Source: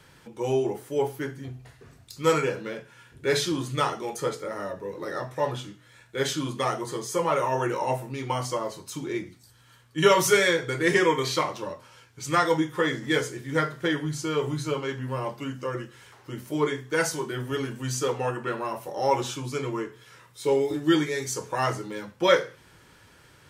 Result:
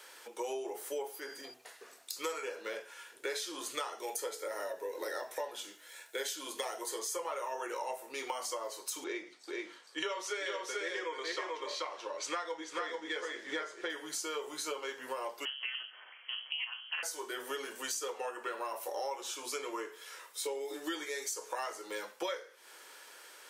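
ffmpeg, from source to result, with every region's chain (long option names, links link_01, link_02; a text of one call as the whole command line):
ffmpeg -i in.wav -filter_complex "[0:a]asettb=1/sr,asplit=3[link_01][link_02][link_03];[link_01]atrim=end=1.144[link_04];[link_02]atrim=start=1.14:end=1.54,asetpts=PTS-STARTPTS,afade=type=in:duration=0.004:curve=qsin,afade=type=out:start_time=0.396:duration=0.004:curve=qsin,acompressor=threshold=-34dB:ratio=5:attack=3.2:release=140:knee=1:detection=peak,aeval=exprs='val(0)+0.00178*sin(2*PI*4800*n/s)':channel_layout=same[link_05];[link_03]atrim=start=1.536[link_06];[link_04][link_05]acrossfade=duration=0.004:curve1=hsin:curve2=qsin[link_07];[link_07][link_06]acrossfade=duration=0.004:curve1=qsin:curve2=hsin,asettb=1/sr,asplit=3[link_08][link_09][link_10];[link_08]atrim=end=3.984[link_11];[link_09]atrim=start=3.98:end=6.99,asetpts=PTS-STARTPTS,afade=type=in:duration=0.004:curve=qsin,afade=type=out:start_time=3.006:duration=0.004:curve=qsin,highshelf=frequency=12000:gain=9.5,bandreject=frequency=1200:width=5.9[link_12];[link_10]atrim=start=6.986[link_13];[link_11][link_12]acrossfade=duration=0.004:curve1=hsin:curve2=qsin[link_14];[link_14][link_13]acrossfade=duration=0.004:curve1=qsin:curve2=hsin,asettb=1/sr,asplit=3[link_15][link_16][link_17];[link_15]atrim=end=9.044[link_18];[link_16]atrim=start=9.04:end=13.9,asetpts=PTS-STARTPTS,afade=type=in:duration=0.004:curve=qsin,afade=type=out:start_time=4.856:duration=0.004:curve=qsin,lowpass=4800,aecho=1:1:436:0.668,atrim=end_sample=214326[link_19];[link_17]atrim=start=13.896[link_20];[link_18][link_19]acrossfade=duration=0.004:curve1=hsin:curve2=qsin[link_21];[link_21][link_20]acrossfade=duration=0.004:curve1=qsin:curve2=hsin,asettb=1/sr,asplit=3[link_22][link_23][link_24];[link_22]atrim=end=15.454[link_25];[link_23]atrim=start=15.45:end=17.03,asetpts=PTS-STARTPTS,afade=type=in:duration=0.004:curve=qsin,afade=type=out:start_time=1.576:duration=0.004:curve=qsin,lowpass=frequency=2700:width_type=q:width=0.5098,lowpass=frequency=2700:width_type=q:width=0.6013,lowpass=frequency=2700:width_type=q:width=0.9,lowpass=frequency=2700:width_type=q:width=2.563,afreqshift=-3200,tremolo=f=240:d=0.857[link_26];[link_24]atrim=start=17.026[link_27];[link_25][link_26]acrossfade=duration=0.004:curve1=hsin:curve2=qsin[link_28];[link_28][link_27]acrossfade=duration=0.004:curve1=qsin:curve2=hsin,highpass=frequency=420:width=0.5412,highpass=frequency=420:width=1.3066,highshelf=frequency=5300:gain=8,acompressor=threshold=-36dB:ratio=10,volume=1dB" out.wav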